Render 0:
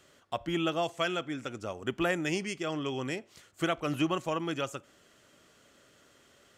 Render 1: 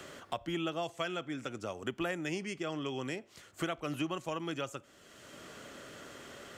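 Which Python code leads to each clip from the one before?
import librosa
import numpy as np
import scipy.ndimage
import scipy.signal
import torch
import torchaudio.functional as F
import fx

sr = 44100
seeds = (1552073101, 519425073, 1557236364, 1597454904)

y = fx.band_squash(x, sr, depth_pct=70)
y = y * librosa.db_to_amplitude(-5.0)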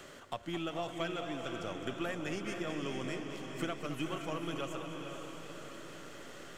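y = np.where(x < 0.0, 10.0 ** (-3.0 / 20.0) * x, x)
y = fx.echo_diffused(y, sr, ms=497, feedback_pct=48, wet_db=-5.5)
y = fx.echo_warbled(y, sr, ms=215, feedback_pct=72, rate_hz=2.8, cents=80, wet_db=-11)
y = y * librosa.db_to_amplitude(-1.5)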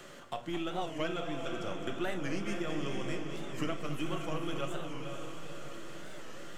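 y = fx.room_shoebox(x, sr, seeds[0], volume_m3=310.0, walls='furnished', distance_m=0.86)
y = fx.record_warp(y, sr, rpm=45.0, depth_cents=160.0)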